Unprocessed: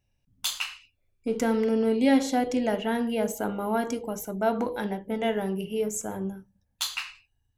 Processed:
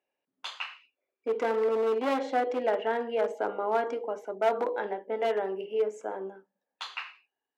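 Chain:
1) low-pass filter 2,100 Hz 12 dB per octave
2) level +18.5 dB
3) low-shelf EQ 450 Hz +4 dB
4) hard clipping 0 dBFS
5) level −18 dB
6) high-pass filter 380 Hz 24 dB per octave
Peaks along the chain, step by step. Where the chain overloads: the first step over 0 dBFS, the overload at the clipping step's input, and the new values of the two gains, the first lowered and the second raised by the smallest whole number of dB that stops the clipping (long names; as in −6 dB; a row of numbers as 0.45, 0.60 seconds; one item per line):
−12.5, +6.0, +8.5, 0.0, −18.0, −14.0 dBFS
step 2, 8.5 dB
step 2 +9.5 dB, step 5 −9 dB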